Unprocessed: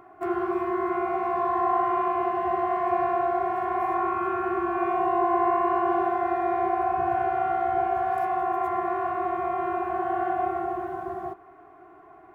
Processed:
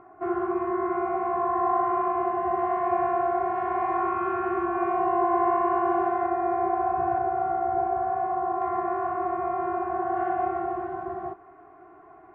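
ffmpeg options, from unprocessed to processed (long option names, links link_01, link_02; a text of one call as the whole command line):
ffmpeg -i in.wav -af "asetnsamples=nb_out_samples=441:pad=0,asendcmd='2.59 lowpass f 2100;3.56 lowpass f 2700;4.66 lowpass f 2100;6.26 lowpass f 1500;7.18 lowpass f 1100;8.62 lowpass f 1600;10.17 lowpass f 2300',lowpass=1700" out.wav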